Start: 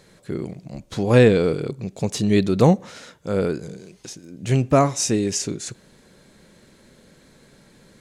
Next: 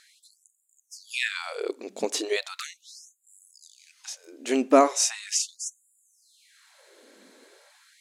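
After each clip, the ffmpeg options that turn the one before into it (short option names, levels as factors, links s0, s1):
-af "afftfilt=real='re*gte(b*sr/1024,210*pow(7000/210,0.5+0.5*sin(2*PI*0.38*pts/sr)))':imag='im*gte(b*sr/1024,210*pow(7000/210,0.5+0.5*sin(2*PI*0.38*pts/sr)))':win_size=1024:overlap=0.75"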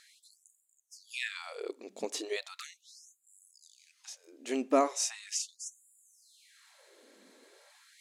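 -af "bandreject=f=1500:w=18,areverse,acompressor=mode=upward:threshold=0.00562:ratio=2.5,areverse,volume=0.376"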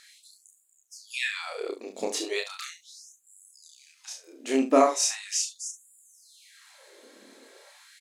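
-af "aecho=1:1:30|71:0.708|0.282,volume=1.78"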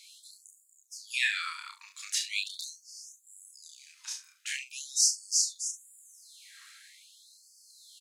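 -af "afftfilt=real='re*gte(b*sr/1024,860*pow(4400/860,0.5+0.5*sin(2*PI*0.43*pts/sr)))':imag='im*gte(b*sr/1024,860*pow(4400/860,0.5+0.5*sin(2*PI*0.43*pts/sr)))':win_size=1024:overlap=0.75,volume=1.26"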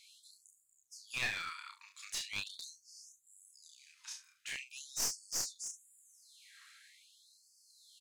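-af "bass=f=250:g=15,treble=f=4000:g=-4,aeval=exprs='clip(val(0),-1,0.0266)':c=same,volume=0.562"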